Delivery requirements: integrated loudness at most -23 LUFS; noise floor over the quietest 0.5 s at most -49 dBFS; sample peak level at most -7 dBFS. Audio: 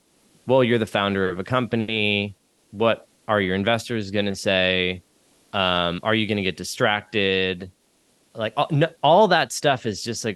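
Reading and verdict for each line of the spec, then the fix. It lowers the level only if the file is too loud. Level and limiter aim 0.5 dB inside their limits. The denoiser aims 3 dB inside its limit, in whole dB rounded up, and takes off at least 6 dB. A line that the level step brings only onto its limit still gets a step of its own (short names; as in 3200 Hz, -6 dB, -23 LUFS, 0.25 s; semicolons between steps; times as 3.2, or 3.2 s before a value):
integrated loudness -21.5 LUFS: fail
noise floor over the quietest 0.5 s -63 dBFS: OK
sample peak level -5.5 dBFS: fail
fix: gain -2 dB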